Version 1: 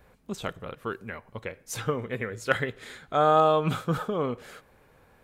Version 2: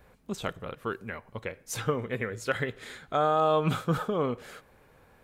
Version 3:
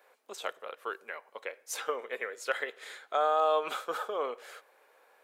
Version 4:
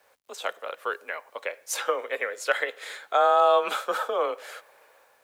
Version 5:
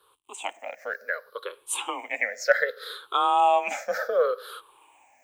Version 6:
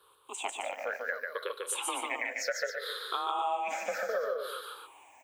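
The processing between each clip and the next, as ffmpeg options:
ffmpeg -i in.wav -af "alimiter=limit=-15dB:level=0:latency=1:release=94" out.wav
ffmpeg -i in.wav -af "highpass=frequency=460:width=0.5412,highpass=frequency=460:width=1.3066,volume=-1.5dB" out.wav
ffmpeg -i in.wav -af "dynaudnorm=framelen=110:gausssize=7:maxgain=7dB,acrusher=bits=10:mix=0:aa=0.000001,afreqshift=27" out.wav
ffmpeg -i in.wav -af "afftfilt=real='re*pow(10,23/40*sin(2*PI*(0.63*log(max(b,1)*sr/1024/100)/log(2)-(-0.66)*(pts-256)/sr)))':imag='im*pow(10,23/40*sin(2*PI*(0.63*log(max(b,1)*sr/1024/100)/log(2)-(-0.66)*(pts-256)/sr)))':win_size=1024:overlap=0.75,volume=-4.5dB" out.wav
ffmpeg -i in.wav -filter_complex "[0:a]acompressor=threshold=-31dB:ratio=10,asplit=2[link_01][link_02];[link_02]aecho=0:1:145.8|265.3:0.708|0.355[link_03];[link_01][link_03]amix=inputs=2:normalize=0" out.wav

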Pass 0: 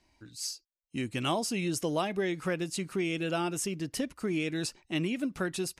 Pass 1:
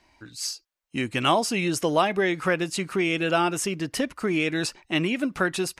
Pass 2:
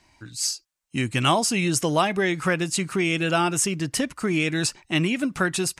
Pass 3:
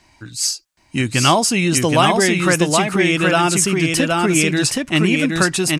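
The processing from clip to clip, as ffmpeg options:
ffmpeg -i in.wav -af "equalizer=frequency=1300:width=0.41:gain=8,volume=3.5dB" out.wav
ffmpeg -i in.wav -af "equalizer=frequency=125:width_type=o:width=1:gain=7,equalizer=frequency=500:width_type=o:width=1:gain=-3,equalizer=frequency=8000:width_type=o:width=1:gain=7,volume=1dB" out.wav
ffmpeg -i in.wav -af "aecho=1:1:772:0.708,volume=6dB" out.wav

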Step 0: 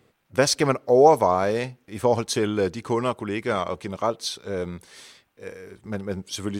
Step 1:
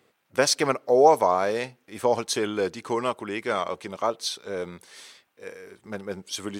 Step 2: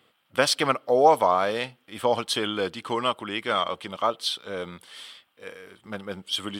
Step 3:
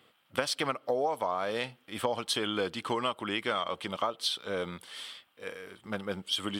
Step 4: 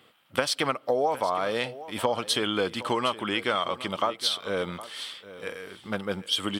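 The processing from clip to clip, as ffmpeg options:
ffmpeg -i in.wav -af "highpass=frequency=380:poles=1" out.wav
ffmpeg -i in.wav -af "equalizer=frequency=400:width_type=o:width=0.33:gain=-6,equalizer=frequency=1250:width_type=o:width=0.33:gain=5,equalizer=frequency=3150:width_type=o:width=0.33:gain=12,equalizer=frequency=6300:width_type=o:width=0.33:gain=-9" out.wav
ffmpeg -i in.wav -af "acompressor=threshold=-26dB:ratio=12" out.wav
ffmpeg -i in.wav -af "aecho=1:1:763:0.158,volume=4.5dB" out.wav

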